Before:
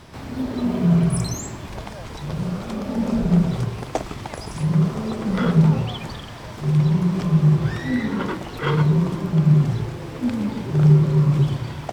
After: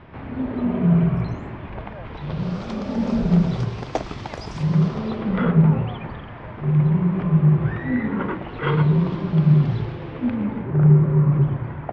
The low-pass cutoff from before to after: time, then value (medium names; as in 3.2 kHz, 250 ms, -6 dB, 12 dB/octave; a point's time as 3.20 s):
low-pass 24 dB/octave
2.03 s 2.6 kHz
2.59 s 5.8 kHz
4.82 s 5.8 kHz
5.55 s 2.4 kHz
8.24 s 2.4 kHz
9.10 s 4.1 kHz
9.81 s 4.1 kHz
10.72 s 2 kHz